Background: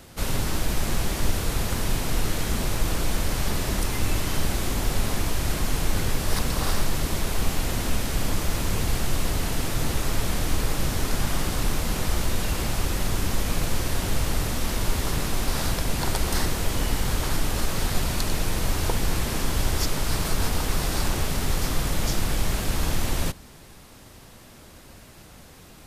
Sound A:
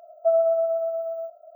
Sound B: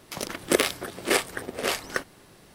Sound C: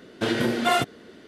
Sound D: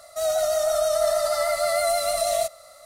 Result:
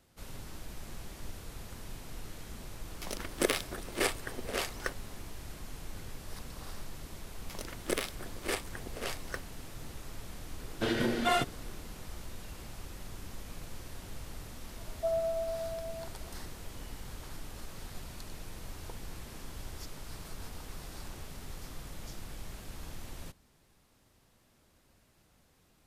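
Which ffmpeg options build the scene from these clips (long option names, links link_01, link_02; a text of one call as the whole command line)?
ffmpeg -i bed.wav -i cue0.wav -i cue1.wav -i cue2.wav -filter_complex "[2:a]asplit=2[link_01][link_02];[0:a]volume=-19.5dB[link_03];[link_01]atrim=end=2.54,asetpts=PTS-STARTPTS,volume=-7.5dB,afade=type=in:duration=0.004:curve=hsin,afade=type=out:start_time=2.536:duration=0.004:curve=hsin,adelay=2900[link_04];[link_02]atrim=end=2.54,asetpts=PTS-STARTPTS,volume=-11.5dB,afade=type=in:duration=0.004:curve=hsin,afade=type=out:start_time=2.536:duration=0.004:curve=hsin,adelay=325458S[link_05];[3:a]atrim=end=1.27,asetpts=PTS-STARTPTS,volume=-6.5dB,afade=type=in:duration=0.004:curve=hsin,afade=type=out:start_time=1.266:duration=0.004:curve=hsin,adelay=10600[link_06];[1:a]atrim=end=1.55,asetpts=PTS-STARTPTS,volume=-11.5dB,afade=type=in:duration=0.004:curve=hsin,afade=type=out:start_time=1.546:duration=0.004:curve=hsin,adelay=14780[link_07];[link_03][link_04][link_05][link_06][link_07]amix=inputs=5:normalize=0" out.wav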